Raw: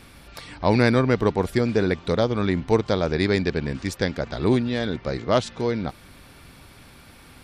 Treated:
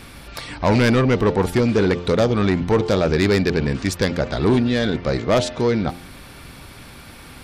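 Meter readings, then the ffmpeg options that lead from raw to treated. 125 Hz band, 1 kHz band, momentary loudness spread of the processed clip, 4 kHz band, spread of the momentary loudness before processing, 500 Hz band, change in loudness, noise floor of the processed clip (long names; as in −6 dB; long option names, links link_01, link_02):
+4.5 dB, +3.0 dB, 7 LU, +4.5 dB, 9 LU, +3.5 dB, +4.0 dB, −41 dBFS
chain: -af "bandreject=frequency=87.74:width_type=h:width=4,bandreject=frequency=175.48:width_type=h:width=4,bandreject=frequency=263.22:width_type=h:width=4,bandreject=frequency=350.96:width_type=h:width=4,bandreject=frequency=438.7:width_type=h:width=4,bandreject=frequency=526.44:width_type=h:width=4,bandreject=frequency=614.18:width_type=h:width=4,bandreject=frequency=701.92:width_type=h:width=4,bandreject=frequency=789.66:width_type=h:width=4,bandreject=frequency=877.4:width_type=h:width=4,asoftclip=type=tanh:threshold=-18dB,volume=7.5dB"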